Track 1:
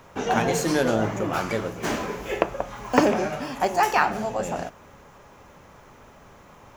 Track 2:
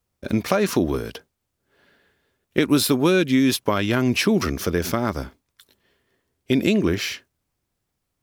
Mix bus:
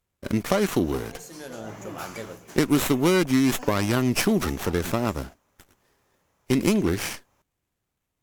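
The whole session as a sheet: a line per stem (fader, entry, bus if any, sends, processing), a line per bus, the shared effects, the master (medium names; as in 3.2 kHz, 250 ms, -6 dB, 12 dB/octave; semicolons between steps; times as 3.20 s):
-10.0 dB, 0.65 s, no send, auto duck -12 dB, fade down 0.20 s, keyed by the second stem
-3.0 dB, 0.00 s, no send, sliding maximum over 9 samples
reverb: none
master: peaking EQ 13 kHz +12 dB 1.9 oct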